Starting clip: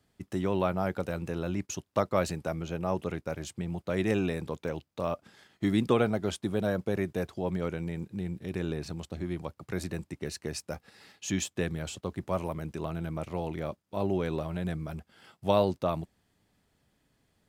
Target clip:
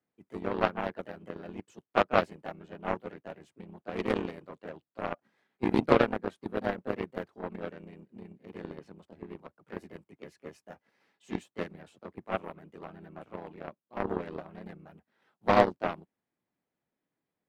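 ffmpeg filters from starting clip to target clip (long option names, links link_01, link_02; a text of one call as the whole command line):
ffmpeg -i in.wav -filter_complex "[0:a]acrossover=split=150 2400:gain=0.141 1 0.224[link_01][link_02][link_03];[link_01][link_02][link_03]amix=inputs=3:normalize=0,asplit=2[link_04][link_05];[link_05]asetrate=52444,aresample=44100,atempo=0.840896,volume=-2dB[link_06];[link_04][link_06]amix=inputs=2:normalize=0,aeval=exprs='0.398*(cos(1*acos(clip(val(0)/0.398,-1,1)))-cos(1*PI/2))+0.0355*(cos(3*acos(clip(val(0)/0.398,-1,1)))-cos(3*PI/2))+0.0355*(cos(7*acos(clip(val(0)/0.398,-1,1)))-cos(7*PI/2))':channel_layout=same,volume=4.5dB" out.wav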